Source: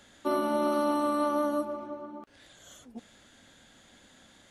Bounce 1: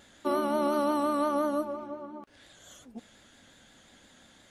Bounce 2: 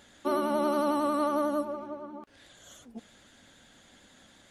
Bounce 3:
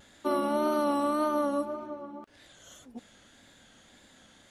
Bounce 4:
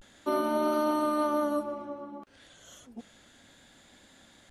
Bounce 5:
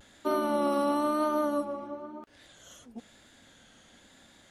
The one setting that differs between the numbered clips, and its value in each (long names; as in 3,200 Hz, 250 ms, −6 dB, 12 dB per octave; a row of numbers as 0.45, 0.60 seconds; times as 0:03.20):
pitch vibrato, speed: 5.7, 11, 1.8, 0.32, 1 Hertz